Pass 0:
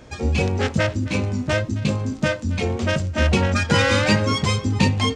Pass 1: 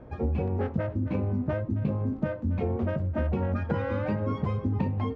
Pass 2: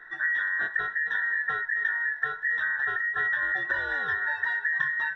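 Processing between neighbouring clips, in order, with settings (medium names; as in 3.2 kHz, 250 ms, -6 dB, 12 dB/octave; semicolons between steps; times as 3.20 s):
compression, threshold -22 dBFS, peak gain reduction 10 dB; low-pass 1 kHz 12 dB/octave; trim -1.5 dB
every band turned upside down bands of 2 kHz; band-stop 1.2 kHz, Q 5.9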